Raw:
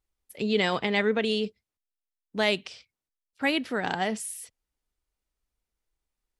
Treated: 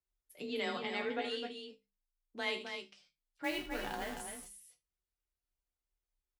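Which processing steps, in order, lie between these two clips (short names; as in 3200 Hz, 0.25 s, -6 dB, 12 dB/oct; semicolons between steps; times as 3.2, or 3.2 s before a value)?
3.44–4.2 level-crossing sampler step -31.5 dBFS; resonator bank A#2 minor, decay 0.21 s; frequency shift +28 Hz; notches 50/100/150/200 Hz; loudspeakers at several distances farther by 27 m -11 dB, 89 m -7 dB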